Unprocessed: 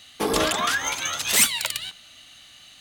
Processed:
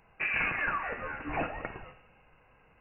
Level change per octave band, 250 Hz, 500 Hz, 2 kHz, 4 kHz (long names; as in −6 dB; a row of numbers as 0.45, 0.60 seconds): −10.0, −11.5, −4.5, −27.0 decibels